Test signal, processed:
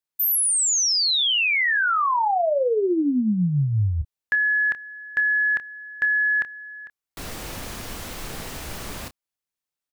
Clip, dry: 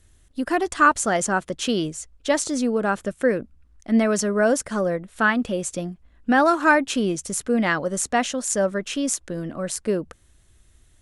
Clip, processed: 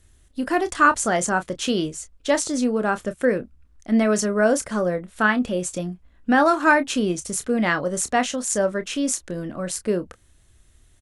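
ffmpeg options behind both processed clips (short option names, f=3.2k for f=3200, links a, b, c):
-filter_complex "[0:a]asplit=2[a][b];[b]adelay=28,volume=-11dB[c];[a][c]amix=inputs=2:normalize=0"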